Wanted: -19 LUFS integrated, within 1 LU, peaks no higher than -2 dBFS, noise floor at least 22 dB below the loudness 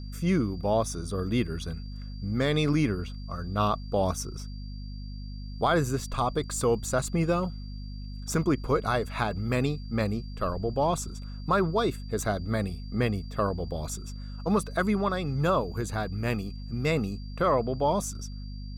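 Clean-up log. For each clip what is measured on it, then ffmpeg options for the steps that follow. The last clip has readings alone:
hum 50 Hz; highest harmonic 250 Hz; hum level -36 dBFS; steady tone 4.7 kHz; tone level -52 dBFS; loudness -28.5 LUFS; peak level -13.0 dBFS; loudness target -19.0 LUFS
-> -af "bandreject=f=50:t=h:w=6,bandreject=f=100:t=h:w=6,bandreject=f=150:t=h:w=6,bandreject=f=200:t=h:w=6,bandreject=f=250:t=h:w=6"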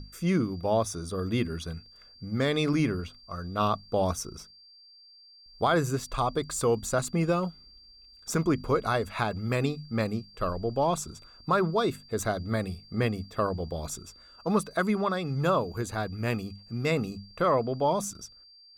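hum not found; steady tone 4.7 kHz; tone level -52 dBFS
-> -af "bandreject=f=4700:w=30"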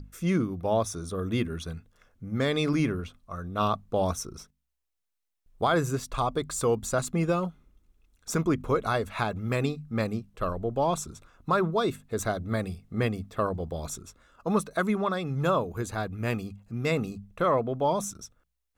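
steady tone not found; loudness -29.0 LUFS; peak level -12.5 dBFS; loudness target -19.0 LUFS
-> -af "volume=3.16"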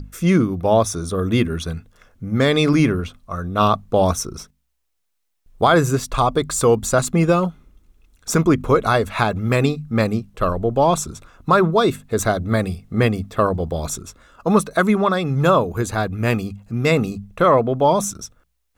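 loudness -19.0 LUFS; peak level -2.5 dBFS; noise floor -71 dBFS

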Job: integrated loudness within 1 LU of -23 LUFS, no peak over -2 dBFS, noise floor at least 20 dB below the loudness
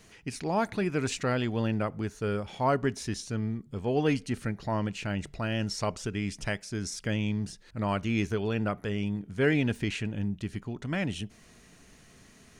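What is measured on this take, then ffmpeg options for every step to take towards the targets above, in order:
loudness -31.0 LUFS; peak level -13.0 dBFS; loudness target -23.0 LUFS
-> -af "volume=2.51"

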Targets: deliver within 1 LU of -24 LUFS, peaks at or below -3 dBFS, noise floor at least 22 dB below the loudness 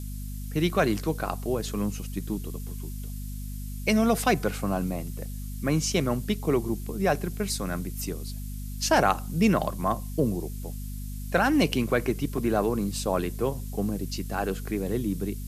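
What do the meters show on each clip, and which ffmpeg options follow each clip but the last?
hum 50 Hz; highest harmonic 250 Hz; hum level -33 dBFS; noise floor -35 dBFS; noise floor target -50 dBFS; loudness -28.0 LUFS; peak level -8.0 dBFS; loudness target -24.0 LUFS
-> -af "bandreject=f=50:t=h:w=6,bandreject=f=100:t=h:w=6,bandreject=f=150:t=h:w=6,bandreject=f=200:t=h:w=6,bandreject=f=250:t=h:w=6"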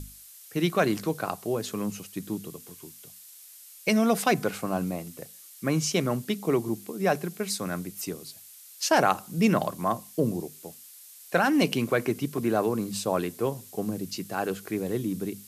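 hum not found; noise floor -49 dBFS; noise floor target -50 dBFS
-> -af "afftdn=nr=6:nf=-49"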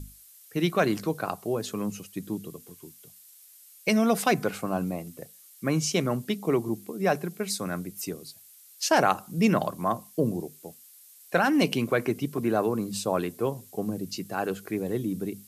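noise floor -53 dBFS; loudness -28.0 LUFS; peak level -8.5 dBFS; loudness target -24.0 LUFS
-> -af "volume=1.58"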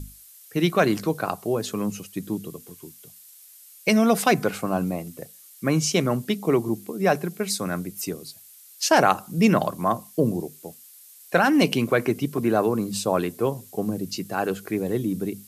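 loudness -24.0 LUFS; peak level -4.5 dBFS; noise floor -49 dBFS

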